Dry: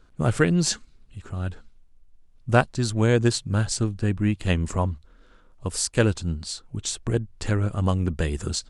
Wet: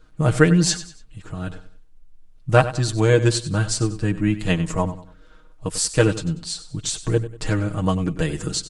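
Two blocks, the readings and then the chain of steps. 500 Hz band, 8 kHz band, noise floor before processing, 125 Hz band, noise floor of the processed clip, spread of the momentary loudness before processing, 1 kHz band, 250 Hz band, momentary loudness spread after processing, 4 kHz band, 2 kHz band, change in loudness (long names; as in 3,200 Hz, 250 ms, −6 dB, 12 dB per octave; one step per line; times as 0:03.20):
+4.5 dB, +3.5 dB, −54 dBFS, +2.5 dB, −48 dBFS, 11 LU, +3.5 dB, +3.5 dB, 15 LU, +3.5 dB, +3.0 dB, +3.5 dB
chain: comb filter 6.4 ms, depth 83%
on a send: repeating echo 95 ms, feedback 35%, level −14 dB
on the sum: level +1 dB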